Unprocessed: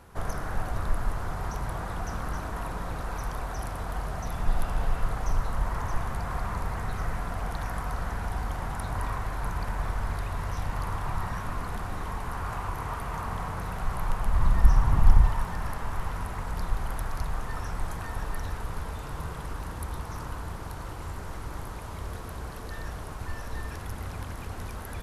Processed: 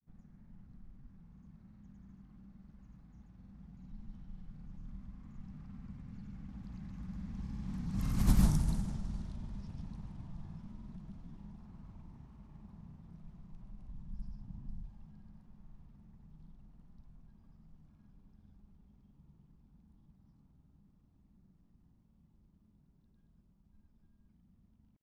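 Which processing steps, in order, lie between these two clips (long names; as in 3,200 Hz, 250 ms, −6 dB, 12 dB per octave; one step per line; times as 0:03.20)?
source passing by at 0:08.39, 36 m/s, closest 2.3 metres
drawn EQ curve 100 Hz 0 dB, 200 Hz +15 dB, 440 Hz −11 dB, 1,500 Hz −16 dB, 5,800 Hz +5 dB
in parallel at −0.5 dB: downward compressor, threshold −59 dBFS, peak gain reduction 26.5 dB
on the sum: granular cloud 100 ms, grains 20 per second, pitch spread up and down by 0 semitones
low-pass that shuts in the quiet parts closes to 2,200 Hz, open at −37 dBFS
level +10 dB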